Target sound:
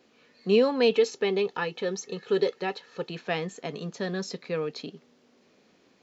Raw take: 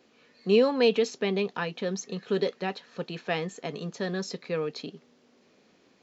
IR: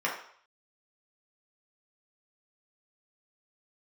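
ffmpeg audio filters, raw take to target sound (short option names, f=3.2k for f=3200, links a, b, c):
-filter_complex "[0:a]asettb=1/sr,asplit=3[a][b][c];[a]atrim=end=0.914[d];[b]atrim=start=0.91:end=3.1,asetpts=PTS-STARTPTS,afade=t=in:d=0.004:c=qsin,afade=t=out:st=2.186:d=0.004:c=qsin,aecho=1:1:2.3:0.5,atrim=end_sample=96579[e];[c]atrim=start=3.096[f];[d][e]acrossfade=d=0.004:c1=hsin:c2=qsin[g];[g][f]acrossfade=d=0.004:c1=qsin:c2=hsin"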